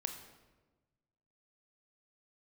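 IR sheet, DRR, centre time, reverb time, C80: 5.5 dB, 23 ms, 1.2 s, 9.5 dB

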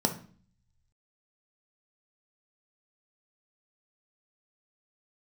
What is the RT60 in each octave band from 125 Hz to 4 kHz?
1.3, 0.75, 0.45, 0.45, 0.40, 0.40 s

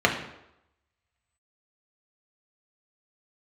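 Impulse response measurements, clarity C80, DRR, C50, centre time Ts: 10.5 dB, 0.0 dB, 7.5 dB, 22 ms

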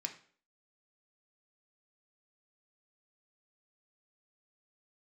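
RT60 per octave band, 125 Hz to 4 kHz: 0.45, 0.50, 0.50, 0.45, 0.45, 0.40 s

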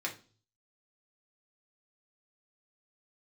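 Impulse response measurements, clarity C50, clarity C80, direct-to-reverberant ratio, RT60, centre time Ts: 12.5 dB, 19.0 dB, -2.0 dB, 0.40 s, 14 ms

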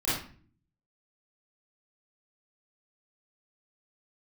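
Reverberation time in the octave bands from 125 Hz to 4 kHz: 0.90, 0.75, 0.45, 0.40, 0.45, 0.35 s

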